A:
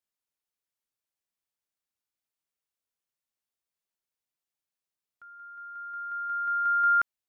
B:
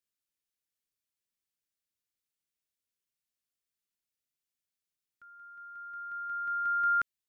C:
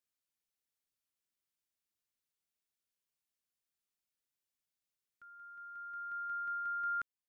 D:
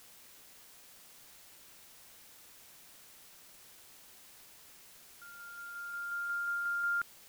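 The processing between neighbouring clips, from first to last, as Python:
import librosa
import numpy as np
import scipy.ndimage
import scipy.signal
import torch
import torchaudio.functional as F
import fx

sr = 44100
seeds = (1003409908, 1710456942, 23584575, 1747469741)

y1 = fx.peak_eq(x, sr, hz=830.0, db=-12.0, octaves=1.2)
y2 = fx.rider(y1, sr, range_db=4, speed_s=0.5)
y2 = y2 * librosa.db_to_amplitude(-6.0)
y3 = fx.quant_dither(y2, sr, seeds[0], bits=10, dither='triangular')
y3 = y3 * librosa.db_to_amplitude(3.5)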